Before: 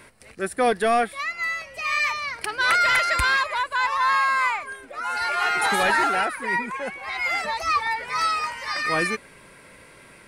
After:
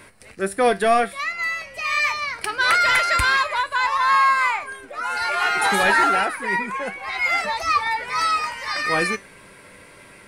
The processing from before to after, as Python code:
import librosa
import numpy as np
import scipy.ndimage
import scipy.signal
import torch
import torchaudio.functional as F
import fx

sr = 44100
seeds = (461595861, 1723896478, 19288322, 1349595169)

y = fx.comb_fb(x, sr, f0_hz=98.0, decay_s=0.21, harmonics='all', damping=0.0, mix_pct=60)
y = y * librosa.db_to_amplitude(7.0)